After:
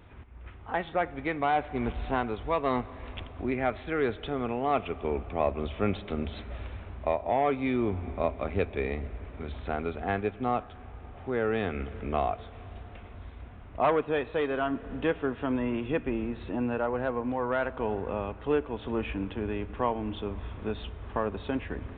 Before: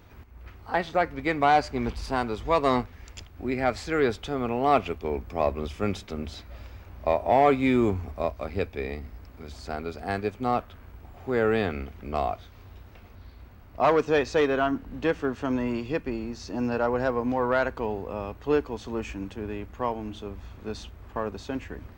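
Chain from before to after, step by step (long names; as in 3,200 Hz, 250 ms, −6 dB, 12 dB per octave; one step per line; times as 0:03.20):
in parallel at −0.5 dB: downward compressor, threshold −36 dBFS, peak gain reduction 19.5 dB
on the sum: comb and all-pass reverb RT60 4.1 s, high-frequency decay 0.9×, pre-delay 20 ms, DRR 18.5 dB
speech leveller within 3 dB 0.5 s
downsampling to 8,000 Hz
level −4.5 dB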